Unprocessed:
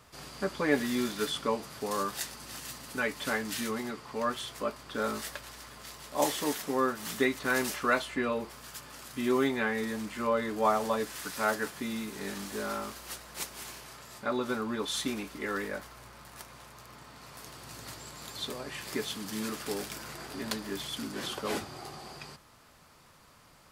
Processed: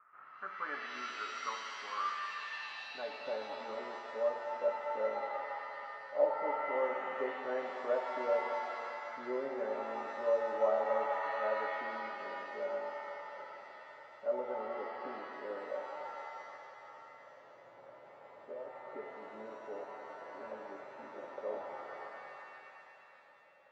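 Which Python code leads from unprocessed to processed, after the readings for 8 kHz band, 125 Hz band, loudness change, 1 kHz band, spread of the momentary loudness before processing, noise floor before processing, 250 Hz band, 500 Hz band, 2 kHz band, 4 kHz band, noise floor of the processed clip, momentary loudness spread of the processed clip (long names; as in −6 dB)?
below −20 dB, below −20 dB, −5.5 dB, −3.0 dB, 17 LU, −58 dBFS, −17.5 dB, −2.0 dB, −7.5 dB, −14.0 dB, −57 dBFS, 18 LU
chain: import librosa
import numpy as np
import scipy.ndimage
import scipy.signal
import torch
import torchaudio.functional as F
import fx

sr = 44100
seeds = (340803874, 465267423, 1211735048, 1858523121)

y = fx.filter_sweep_bandpass(x, sr, from_hz=1300.0, to_hz=570.0, start_s=2.12, end_s=3.27, q=7.6)
y = scipy.signal.sosfilt(scipy.signal.butter(6, 2400.0, 'lowpass', fs=sr, output='sos'), y)
y = fx.rev_shimmer(y, sr, seeds[0], rt60_s=2.7, semitones=7, shimmer_db=-2, drr_db=2.5)
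y = F.gain(torch.from_numpy(y), 3.0).numpy()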